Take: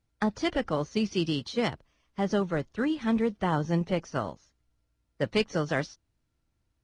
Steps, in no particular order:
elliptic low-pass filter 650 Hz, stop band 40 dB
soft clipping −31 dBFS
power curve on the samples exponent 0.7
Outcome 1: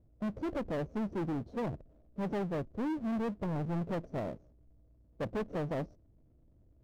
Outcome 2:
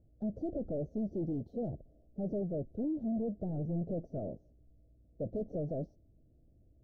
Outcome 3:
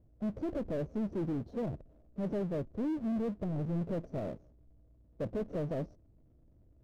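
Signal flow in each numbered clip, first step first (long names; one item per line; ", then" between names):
elliptic low-pass filter, then soft clipping, then power curve on the samples
soft clipping, then power curve on the samples, then elliptic low-pass filter
soft clipping, then elliptic low-pass filter, then power curve on the samples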